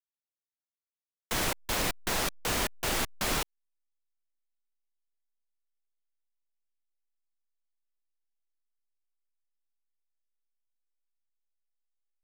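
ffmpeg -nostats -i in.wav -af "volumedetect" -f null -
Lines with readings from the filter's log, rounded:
mean_volume: -38.6 dB
max_volume: -16.7 dB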